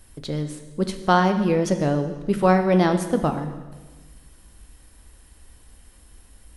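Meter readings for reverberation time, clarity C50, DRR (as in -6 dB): 1.3 s, 9.5 dB, 7.0 dB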